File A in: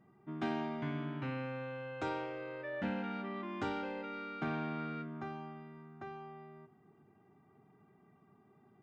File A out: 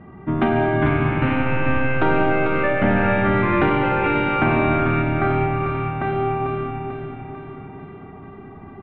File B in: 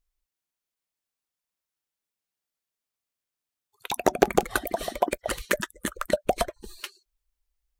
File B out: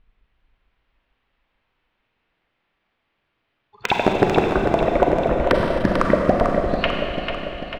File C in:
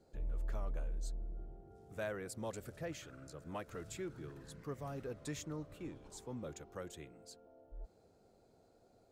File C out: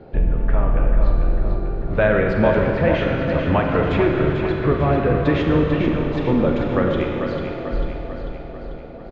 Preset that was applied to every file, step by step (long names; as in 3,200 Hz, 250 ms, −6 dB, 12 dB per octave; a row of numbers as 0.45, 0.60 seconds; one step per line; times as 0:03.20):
sub-octave generator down 1 octave, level −5 dB
inverse Chebyshev low-pass filter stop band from 8,900 Hz, stop band 60 dB
hum removal 172.3 Hz, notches 28
treble cut that deepens with the level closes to 760 Hz, closed at −26.5 dBFS
downward compressor 2.5 to 1, threshold −40 dBFS
wave folding −23 dBFS
on a send: repeating echo 444 ms, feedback 57%, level −7 dB
on the sum: four-comb reverb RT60 2.7 s, combs from 33 ms, DRR 1.5 dB
loudness normalisation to −20 LKFS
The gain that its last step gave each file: +22.0, +20.0, +25.5 decibels